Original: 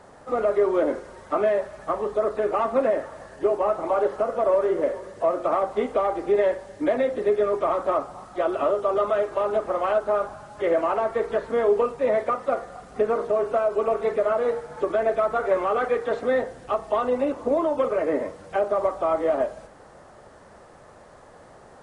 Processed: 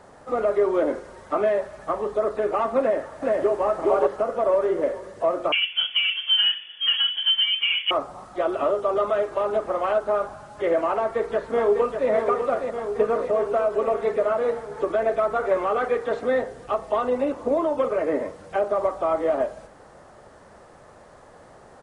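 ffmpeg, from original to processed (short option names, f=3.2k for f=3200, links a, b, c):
-filter_complex "[0:a]asplit=2[a][b];[b]afade=t=in:st=2.8:d=0.01,afade=t=out:st=3.64:d=0.01,aecho=0:1:420|840:0.944061|0.0944061[c];[a][c]amix=inputs=2:normalize=0,asettb=1/sr,asplit=3[d][e][f];[d]atrim=end=5.524[g];[e]atrim=start=5.52:end=7.91,asetpts=PTS-STARTPTS,afade=t=in:d=0.004:c=qsin,afade=t=out:st=2.386:d=0.004:c=qsin,lowpass=f=3k:t=q:w=0.5098,lowpass=f=3k:t=q:w=0.6013,lowpass=f=3k:t=q:w=0.9,lowpass=f=3k:t=q:w=2.563,afreqshift=-3500[h];[f]atrim=start=7.906[i];[g][h]acrossfade=d=0.004:c1=hsin:c2=qsin[j];[j][i]acrossfade=d=0.004:c1=qsin:c2=hsin,asplit=2[k][l];[l]afade=t=in:st=10.93:d=0.01,afade=t=out:st=12.1:d=0.01,aecho=0:1:600|1200|1800|2400|3000|3600|4200|4800|5400|6000|6600:0.501187|0.350831|0.245582|0.171907|0.120335|0.0842345|0.0589642|0.0412749|0.0288924|0.0202247|0.0141573[m];[k][m]amix=inputs=2:normalize=0"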